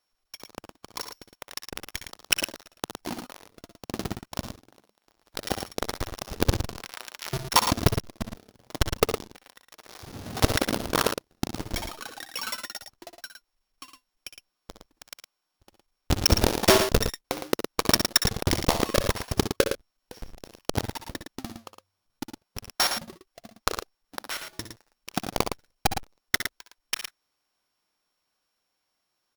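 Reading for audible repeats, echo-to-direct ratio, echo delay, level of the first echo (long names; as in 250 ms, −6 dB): 2, −6.0 dB, 60 ms, −12.0 dB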